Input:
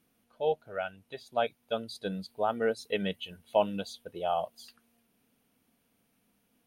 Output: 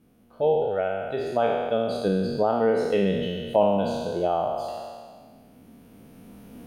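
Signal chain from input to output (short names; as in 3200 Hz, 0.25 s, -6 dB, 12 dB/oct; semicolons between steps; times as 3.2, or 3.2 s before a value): spectral trails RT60 1.35 s; recorder AGC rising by 7.4 dB/s; tilt shelf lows +7.5 dB, about 890 Hz; in parallel at -2 dB: compressor, threshold -35 dBFS, peak gain reduction 18 dB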